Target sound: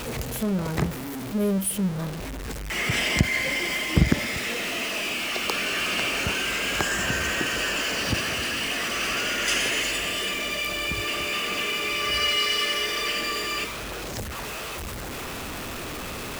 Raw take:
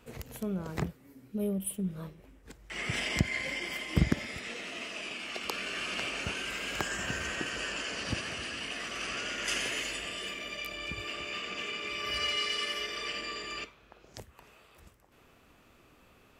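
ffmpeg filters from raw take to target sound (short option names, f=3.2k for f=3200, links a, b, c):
-af "aeval=exprs='val(0)+0.5*0.0188*sgn(val(0))':c=same,volume=6dB"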